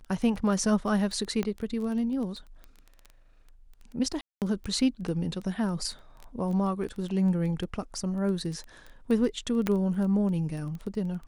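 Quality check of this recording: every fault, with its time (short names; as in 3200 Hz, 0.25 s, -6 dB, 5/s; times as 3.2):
crackle 10/s -33 dBFS
1.43 pop -17 dBFS
4.21–4.42 gap 0.208 s
9.67 pop -13 dBFS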